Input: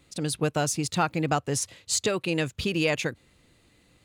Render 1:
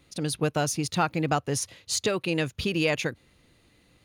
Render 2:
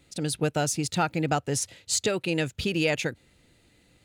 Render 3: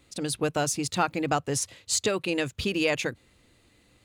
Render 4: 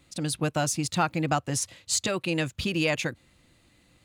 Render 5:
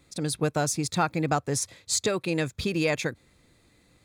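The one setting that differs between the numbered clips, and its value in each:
band-stop, frequency: 7.7 kHz, 1.1 kHz, 160 Hz, 430 Hz, 2.9 kHz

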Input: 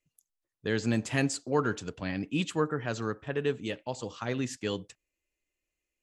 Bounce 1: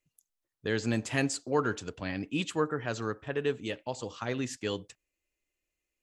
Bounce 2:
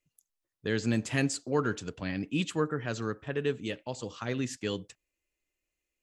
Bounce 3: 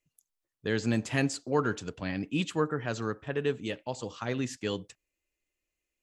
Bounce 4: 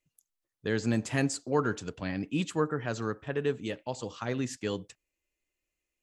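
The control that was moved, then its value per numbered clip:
dynamic bell, frequency: 170 Hz, 830 Hz, 8.5 kHz, 3 kHz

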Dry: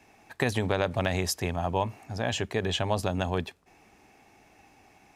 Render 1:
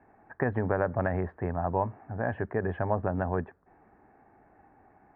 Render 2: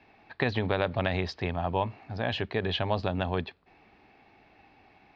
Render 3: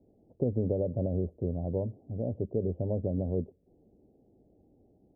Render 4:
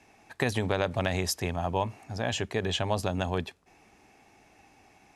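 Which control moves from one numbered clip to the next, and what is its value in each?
elliptic low-pass, frequency: 1.7 kHz, 4.4 kHz, 550 Hz, 12 kHz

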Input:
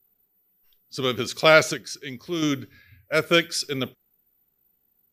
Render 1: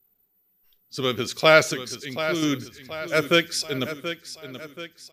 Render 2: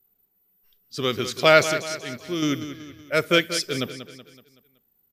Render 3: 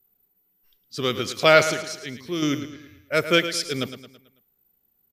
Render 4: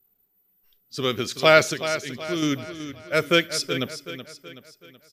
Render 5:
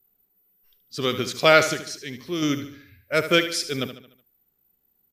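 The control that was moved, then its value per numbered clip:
feedback delay, time: 730 ms, 188 ms, 110 ms, 376 ms, 74 ms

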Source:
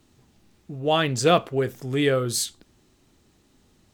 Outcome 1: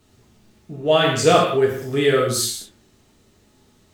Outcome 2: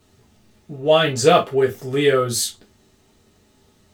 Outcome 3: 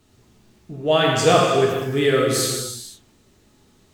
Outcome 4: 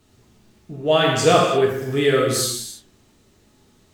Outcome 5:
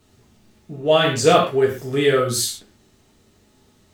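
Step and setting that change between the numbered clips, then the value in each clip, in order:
gated-style reverb, gate: 240 ms, 80 ms, 540 ms, 370 ms, 160 ms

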